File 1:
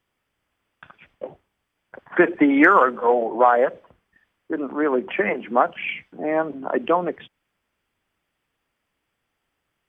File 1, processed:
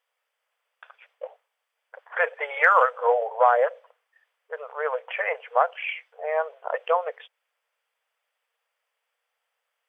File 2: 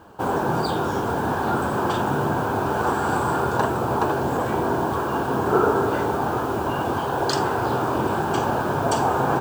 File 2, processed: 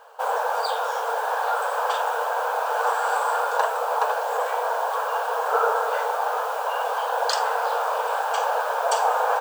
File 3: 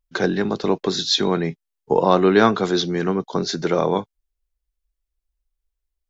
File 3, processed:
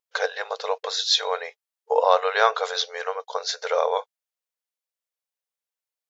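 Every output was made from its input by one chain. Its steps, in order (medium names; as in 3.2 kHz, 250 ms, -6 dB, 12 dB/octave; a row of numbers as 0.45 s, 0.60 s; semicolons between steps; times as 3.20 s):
brick-wall FIR high-pass 440 Hz; normalise loudness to -24 LUFS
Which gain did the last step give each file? -2.5 dB, +1.0 dB, -0.5 dB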